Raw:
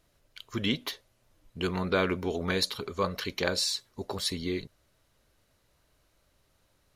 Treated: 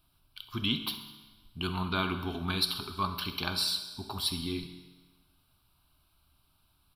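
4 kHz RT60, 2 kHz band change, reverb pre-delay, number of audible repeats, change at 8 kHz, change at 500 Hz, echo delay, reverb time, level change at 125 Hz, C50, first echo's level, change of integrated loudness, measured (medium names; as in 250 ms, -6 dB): 1.2 s, -3.5 dB, 5 ms, 2, -4.0 dB, -10.0 dB, 67 ms, 1.3 s, -0.5 dB, 8.5 dB, -15.5 dB, -1.5 dB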